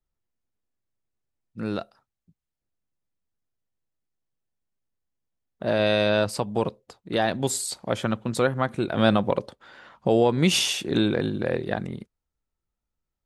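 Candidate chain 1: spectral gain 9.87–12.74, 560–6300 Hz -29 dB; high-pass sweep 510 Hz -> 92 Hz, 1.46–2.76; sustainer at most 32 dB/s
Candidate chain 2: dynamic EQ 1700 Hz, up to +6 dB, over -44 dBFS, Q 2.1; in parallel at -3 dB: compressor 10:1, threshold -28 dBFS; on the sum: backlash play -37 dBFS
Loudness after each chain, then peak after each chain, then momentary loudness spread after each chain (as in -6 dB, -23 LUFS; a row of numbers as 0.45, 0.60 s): -22.0, -22.5 LUFS; -3.5, -3.5 dBFS; 13, 10 LU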